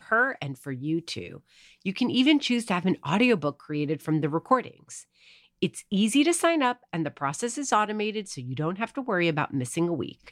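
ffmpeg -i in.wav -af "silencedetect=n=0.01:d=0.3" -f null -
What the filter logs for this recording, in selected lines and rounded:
silence_start: 1.37
silence_end: 1.85 | silence_duration: 0.48
silence_start: 5.02
silence_end: 5.62 | silence_duration: 0.61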